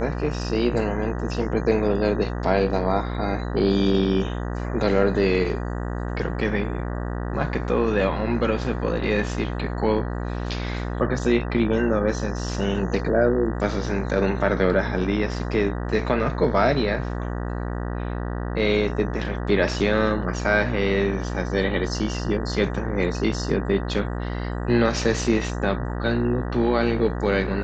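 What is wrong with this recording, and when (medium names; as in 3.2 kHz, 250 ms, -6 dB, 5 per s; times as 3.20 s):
buzz 60 Hz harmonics 32 -28 dBFS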